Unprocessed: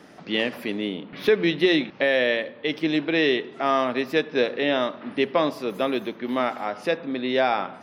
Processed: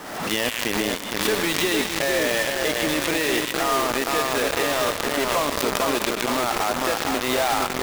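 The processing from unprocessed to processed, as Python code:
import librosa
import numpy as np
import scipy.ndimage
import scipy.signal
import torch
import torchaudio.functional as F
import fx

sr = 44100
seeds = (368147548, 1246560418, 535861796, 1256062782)

p1 = fx.peak_eq(x, sr, hz=1000.0, db=11.5, octaves=1.7)
p2 = fx.over_compress(p1, sr, threshold_db=-21.0, ratio=-0.5)
p3 = p1 + (p2 * 10.0 ** (0.0 / 20.0))
p4 = fx.high_shelf(p3, sr, hz=3600.0, db=6.0)
p5 = p4 + fx.echo_split(p4, sr, split_hz=1700.0, low_ms=460, high_ms=117, feedback_pct=52, wet_db=-4.0, dry=0)
p6 = fx.quant_companded(p5, sr, bits=2)
p7 = fx.pre_swell(p6, sr, db_per_s=49.0)
y = p7 * 10.0 ** (-17.0 / 20.0)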